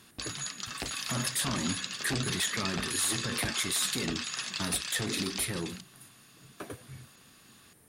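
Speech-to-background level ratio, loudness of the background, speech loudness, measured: 2.0 dB, -34.5 LUFS, -32.5 LUFS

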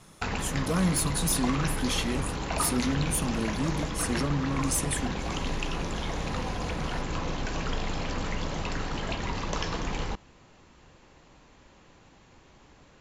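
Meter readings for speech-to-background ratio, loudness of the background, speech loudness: 3.0 dB, -32.5 LUFS, -29.5 LUFS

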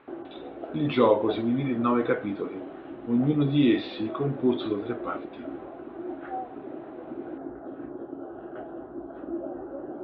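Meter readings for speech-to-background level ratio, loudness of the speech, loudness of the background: 13.0 dB, -26.0 LUFS, -39.0 LUFS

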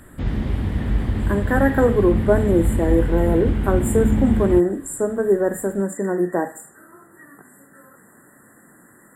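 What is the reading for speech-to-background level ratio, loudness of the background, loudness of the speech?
2.5 dB, -23.0 LUFS, -20.5 LUFS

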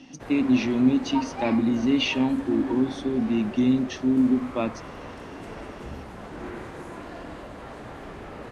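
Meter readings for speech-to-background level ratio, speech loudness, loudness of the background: 15.0 dB, -24.0 LUFS, -39.0 LUFS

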